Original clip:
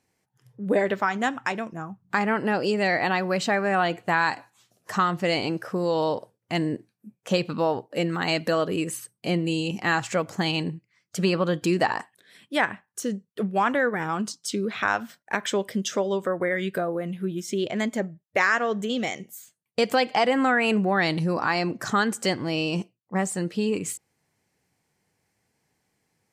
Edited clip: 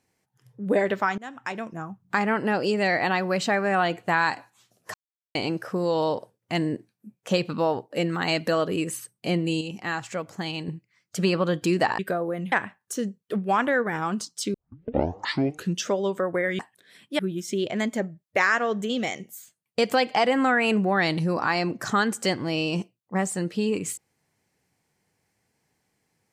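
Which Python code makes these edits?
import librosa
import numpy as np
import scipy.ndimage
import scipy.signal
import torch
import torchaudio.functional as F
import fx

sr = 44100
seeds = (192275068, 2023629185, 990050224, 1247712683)

y = fx.edit(x, sr, fx.fade_in_from(start_s=1.18, length_s=0.56, floor_db=-23.0),
    fx.silence(start_s=4.94, length_s=0.41),
    fx.clip_gain(start_s=9.61, length_s=1.07, db=-6.0),
    fx.swap(start_s=11.99, length_s=0.6, other_s=16.66, other_length_s=0.53),
    fx.tape_start(start_s=14.61, length_s=1.32), tone=tone)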